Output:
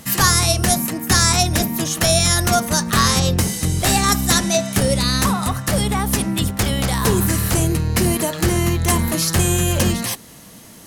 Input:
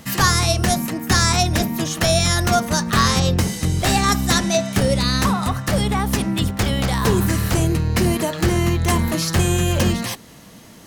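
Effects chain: bell 11000 Hz +8.5 dB 1.2 oct

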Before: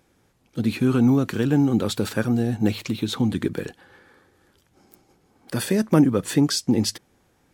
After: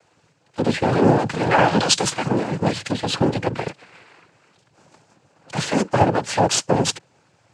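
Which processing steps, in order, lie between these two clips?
minimum comb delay 1.6 ms; noise vocoder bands 8; 1.49–2.1 bell 1500 Hz -> 11000 Hz +12 dB 2.3 oct; gain +7 dB

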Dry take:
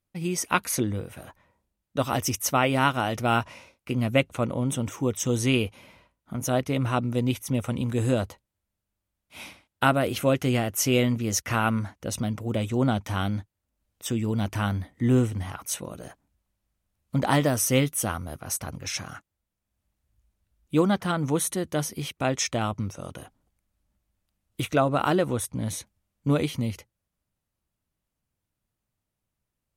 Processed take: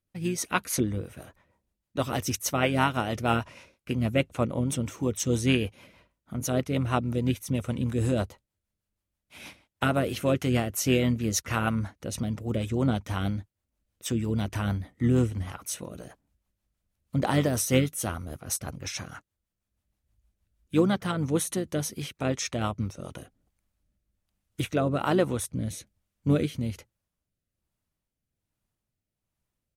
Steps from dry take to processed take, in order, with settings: harmoniser -7 st -14 dB; rotary speaker horn 6.3 Hz, later 1.2 Hz, at 22.52

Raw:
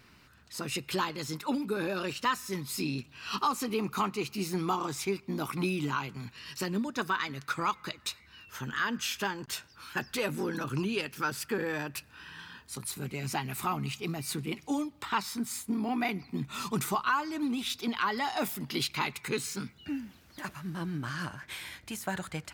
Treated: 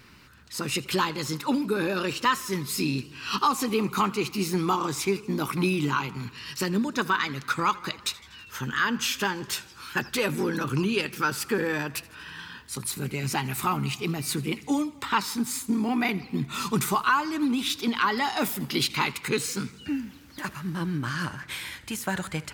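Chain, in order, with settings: bell 680 Hz -6.5 dB 0.32 oct; warbling echo 81 ms, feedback 68%, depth 136 cents, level -21 dB; gain +6 dB

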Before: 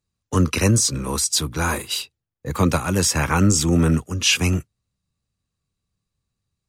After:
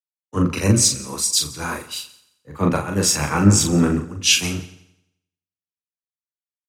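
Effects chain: HPF 100 Hz; doubler 40 ms -4 dB; multi-head echo 87 ms, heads first and second, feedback 58%, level -18 dB; three-band expander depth 100%; gain -2 dB

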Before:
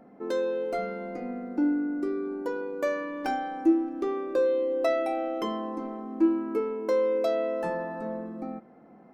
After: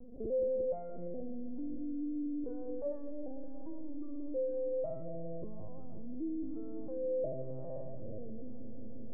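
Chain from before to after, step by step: LPF 3100 Hz 12 dB/oct; sample leveller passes 2; HPF 110 Hz 6 dB/oct; tilt -2 dB/oct; fixed phaser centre 570 Hz, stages 8; de-hum 197.5 Hz, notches 4; LPC vocoder at 8 kHz pitch kept; phaser stages 2, 1 Hz, lowest notch 350–1100 Hz; on a send: dark delay 0.175 s, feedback 71%, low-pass 410 Hz, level -8 dB; on the sum: limiter -35 dBFS, peak gain reduction 21.5 dB; EQ curve 160 Hz 0 dB, 650 Hz +10 dB, 1600 Hz -29 dB; gain +1 dB

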